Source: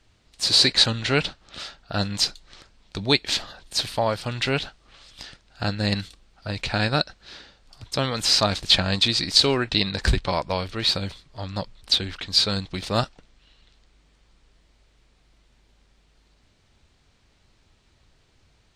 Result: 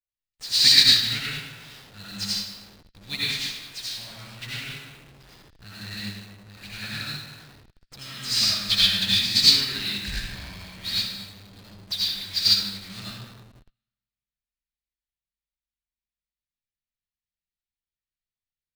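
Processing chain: EQ curve 210 Hz 0 dB, 510 Hz -18 dB, 930 Hz -13 dB, 1800 Hz +6 dB; digital reverb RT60 1.7 s, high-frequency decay 0.8×, pre-delay 40 ms, DRR -7.5 dB; in parallel at -4 dB: Schmitt trigger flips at -27.5 dBFS; on the sum: upward expander 2.5:1, over -28 dBFS; gain -8.5 dB

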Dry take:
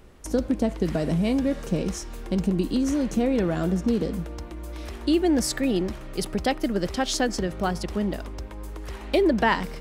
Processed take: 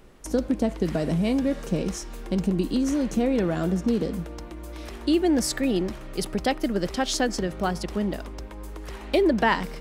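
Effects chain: bell 79 Hz -11.5 dB 0.48 oct

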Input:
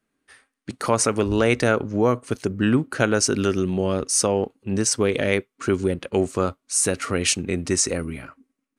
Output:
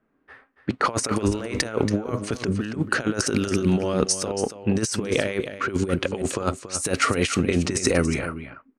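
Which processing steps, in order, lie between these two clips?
low-pass opened by the level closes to 1300 Hz, open at -18 dBFS; low shelf 340 Hz -3.5 dB; negative-ratio compressor -27 dBFS, ratio -0.5; on a send: echo 0.281 s -11 dB; on the sum: gain +4.5 dB

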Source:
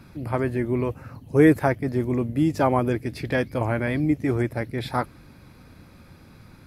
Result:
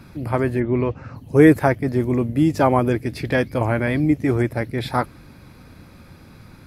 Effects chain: 0.59–1.15 LPF 3000 Hz -> 7600 Hz 24 dB/oct; gain +4 dB

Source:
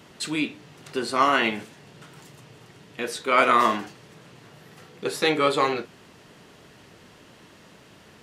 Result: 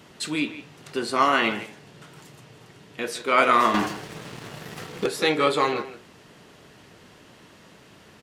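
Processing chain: 3.74–5.06 sample leveller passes 3; speakerphone echo 0.16 s, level -12 dB

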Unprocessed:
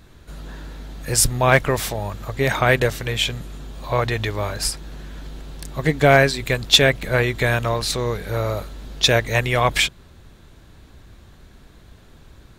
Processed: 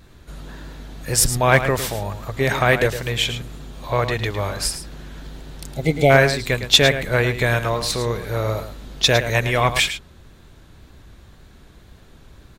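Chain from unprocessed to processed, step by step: echo 0.108 s -10.5 dB; wow and flutter 24 cents; spectral repair 5.36–6.08, 880–2000 Hz before

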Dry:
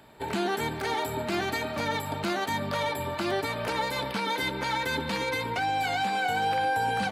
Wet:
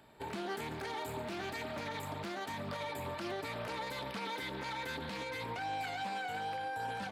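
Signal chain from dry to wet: limiter -24.5 dBFS, peak gain reduction 7 dB; Doppler distortion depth 0.28 ms; gain -7 dB

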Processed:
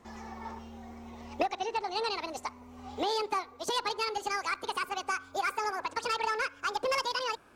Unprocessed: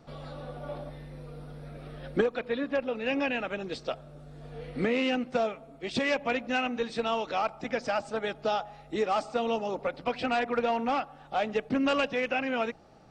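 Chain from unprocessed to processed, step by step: speed glide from 151% -> 196%; gain -3 dB

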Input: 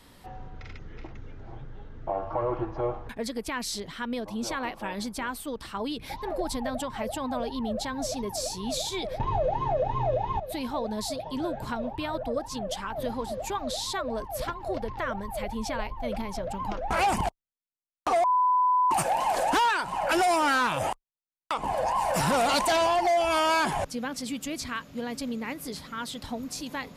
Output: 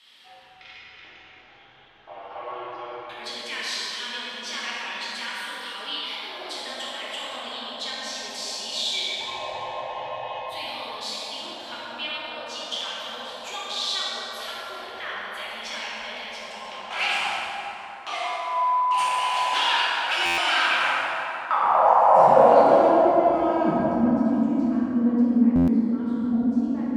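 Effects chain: band-pass sweep 3100 Hz -> 240 Hz, 20.43–23.21; plate-style reverb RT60 3.8 s, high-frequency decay 0.5×, DRR -8.5 dB; stuck buffer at 20.25/25.55, samples 512, times 10; gain +6 dB

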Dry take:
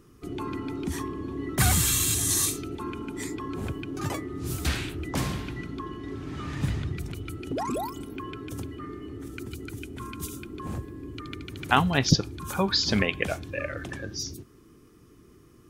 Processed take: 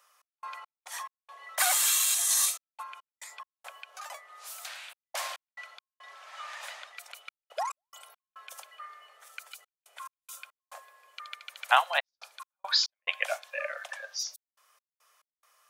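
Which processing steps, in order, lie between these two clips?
steep high-pass 570 Hz 72 dB/oct; 2.82–5.12 compressor 6:1, threshold -40 dBFS, peak gain reduction 10.5 dB; step gate "x.x.x.xxxxx" 70 bpm -60 dB

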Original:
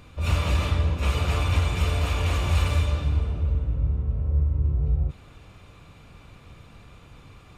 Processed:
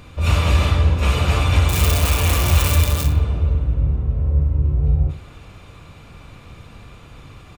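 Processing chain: 1.69–3.06 switching spikes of -19 dBFS; on a send: feedback echo 62 ms, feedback 27%, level -10.5 dB; on the sum: gain +6.5 dB

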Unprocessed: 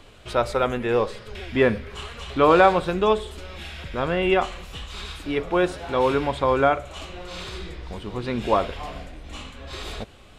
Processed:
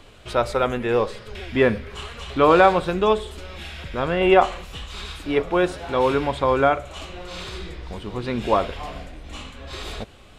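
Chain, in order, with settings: 4.2–5.42 dynamic EQ 720 Hz, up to +7 dB, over -34 dBFS, Q 0.71; short-mantissa float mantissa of 8-bit; gain +1 dB

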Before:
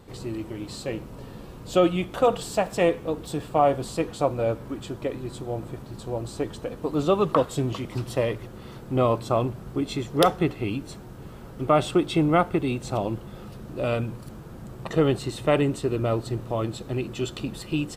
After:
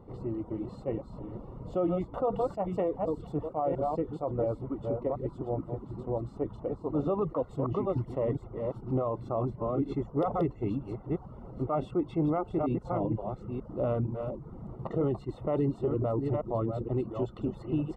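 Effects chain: reverse delay 0.469 s, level -7 dB; polynomial smoothing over 65 samples; limiter -18.5 dBFS, peak gain reduction 10 dB; reverb removal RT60 0.52 s; attack slew limiter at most 410 dB/s; gain -1.5 dB

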